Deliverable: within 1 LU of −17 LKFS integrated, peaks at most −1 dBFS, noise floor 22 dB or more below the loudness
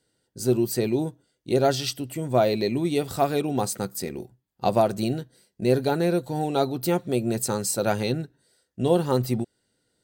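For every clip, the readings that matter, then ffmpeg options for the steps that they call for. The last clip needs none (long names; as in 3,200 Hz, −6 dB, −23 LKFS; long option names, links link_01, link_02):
integrated loudness −25.0 LKFS; sample peak −7.0 dBFS; target loudness −17.0 LKFS
→ -af "volume=8dB,alimiter=limit=-1dB:level=0:latency=1"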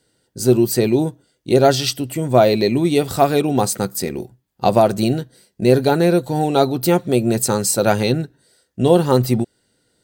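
integrated loudness −17.5 LKFS; sample peak −1.0 dBFS; background noise floor −66 dBFS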